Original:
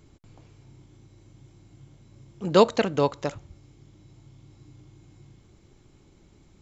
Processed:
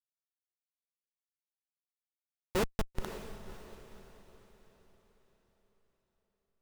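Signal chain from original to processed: Schmitt trigger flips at -14.5 dBFS; echo that smears into a reverb 538 ms, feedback 43%, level -10.5 dB; trim +2.5 dB

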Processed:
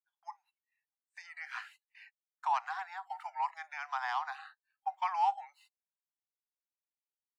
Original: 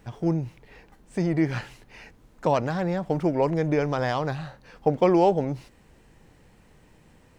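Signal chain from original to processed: spectral noise reduction 22 dB; gate -48 dBFS, range -24 dB; steep high-pass 780 Hz 96 dB/octave; treble shelf 2 kHz -12 dB

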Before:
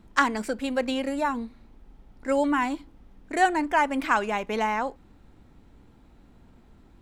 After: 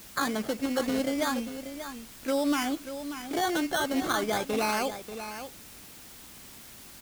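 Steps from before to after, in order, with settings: decimation with a swept rate 14×, swing 60% 0.33 Hz; comb of notches 960 Hz; peak limiter -19 dBFS, peak gain reduction 10.5 dB; delay 587 ms -10.5 dB; word length cut 8-bit, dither triangular; loudspeaker Doppler distortion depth 0.11 ms

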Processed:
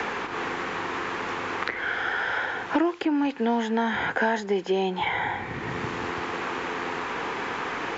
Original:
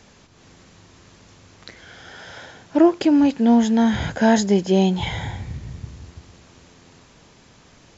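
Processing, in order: peaking EQ 610 Hz -12.5 dB 0.35 oct; in parallel at -3 dB: peak limiter -12.5 dBFS, peak gain reduction 6 dB; on the sum: three-band isolator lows -22 dB, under 370 Hz, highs -18 dB, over 2.8 kHz; three bands compressed up and down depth 100%

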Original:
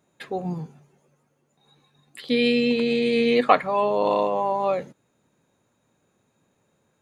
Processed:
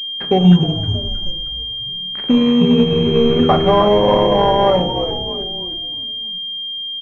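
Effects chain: peaking EQ 100 Hz +8.5 dB 2.4 oct; waveshaping leveller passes 2; compression 6:1, threshold -20 dBFS, peak gain reduction 13 dB; frequency-shifting echo 313 ms, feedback 45%, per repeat -73 Hz, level -6.5 dB; reverberation RT60 0.50 s, pre-delay 5 ms, DRR 4.5 dB; class-D stage that switches slowly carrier 3.2 kHz; trim +7 dB

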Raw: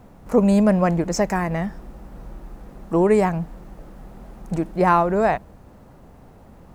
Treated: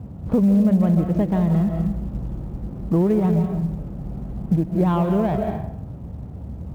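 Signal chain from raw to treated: median filter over 25 samples; high-pass 68 Hz 24 dB/octave; RIAA curve playback; reverberation RT60 0.70 s, pre-delay 110 ms, DRR 6.5 dB; short-mantissa float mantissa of 4-bit; compression 3:1, threshold -21 dBFS, peak gain reduction 12.5 dB; tone controls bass +5 dB, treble -4 dB

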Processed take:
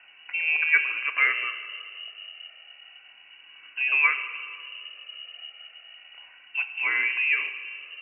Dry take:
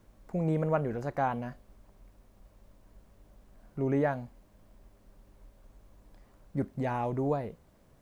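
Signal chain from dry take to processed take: drifting ripple filter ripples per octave 1.9, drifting -0.32 Hz, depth 12 dB; on a send at -9 dB: reverberation RT60 1.4 s, pre-delay 5 ms; on the sum: frequency inversion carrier 2.9 kHz; three-band isolator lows -20 dB, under 340 Hz, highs -23 dB, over 2.3 kHz; band-stop 910 Hz, Q 5.7; in parallel at +1 dB: compression, threshold -51 dBFS, peak gain reduction 24 dB; on the sum: trim +8.5 dB

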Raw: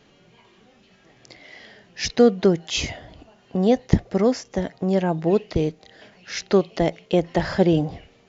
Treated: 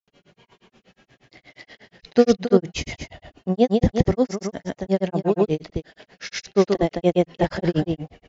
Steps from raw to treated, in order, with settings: delay 214 ms -6 dB; granulator 110 ms, grains 8.4 per s, pitch spread up and down by 0 st; trim +2 dB

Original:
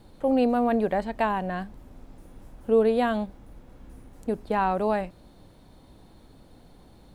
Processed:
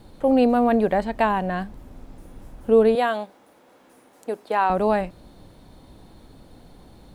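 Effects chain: 2.95–4.70 s: high-pass 440 Hz 12 dB/octave; trim +4.5 dB

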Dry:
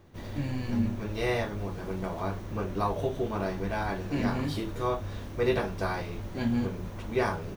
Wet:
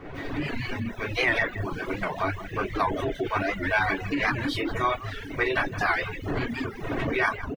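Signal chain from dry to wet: wind noise 300 Hz -35 dBFS; on a send at -8 dB: graphic EQ 250/500/1000/2000 Hz +9/+6/-9/+9 dB + reverberation RT60 0.55 s, pre-delay 3 ms; on the sum: level rider gain up to 5.5 dB; reverb removal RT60 0.9 s; peak limiter -17 dBFS, peak gain reduction 11 dB; peaking EQ 2 kHz +14.5 dB 2.1 oct; hum notches 60/120/180/240 Hz; echo from a far wall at 28 m, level -10 dB; reverb removal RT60 0.61 s; warped record 78 rpm, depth 160 cents; trim -4 dB

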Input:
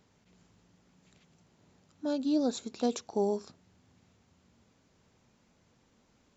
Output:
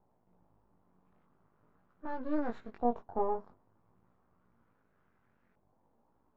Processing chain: half-wave rectifier; chorus 0.47 Hz, delay 16 ms, depth 5.9 ms; LFO low-pass saw up 0.36 Hz 810–1700 Hz

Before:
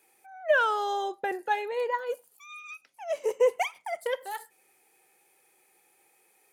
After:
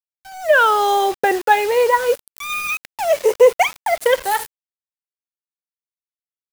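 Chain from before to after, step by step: in parallel at +3 dB: compression 8:1, threshold -40 dBFS, peak gain reduction 21 dB; on the sum: bit crusher 7-bit; level rider gain up to 14.5 dB

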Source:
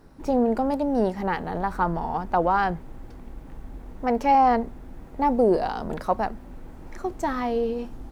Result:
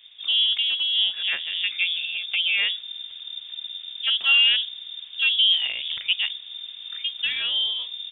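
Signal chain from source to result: frequency inversion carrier 3.6 kHz; 1.69–2.60 s: comb of notches 950 Hz

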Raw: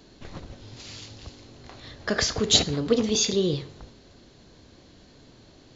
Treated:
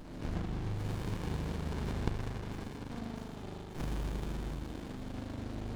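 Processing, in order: on a send: feedback echo behind a high-pass 102 ms, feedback 77%, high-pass 2.5 kHz, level -8 dB; on the sum: dynamic bell 5.3 kHz, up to -4 dB, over -40 dBFS, Q 2.4; in parallel at -3.5 dB: saturation -22 dBFS, distortion -9 dB; on the sum: inverted gate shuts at -21 dBFS, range -28 dB; spring tank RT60 3.6 s, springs 39 ms, chirp 25 ms, DRR -7 dB; compression, threshold -29 dBFS, peak gain reduction 6 dB; sliding maximum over 65 samples; trim +1.5 dB

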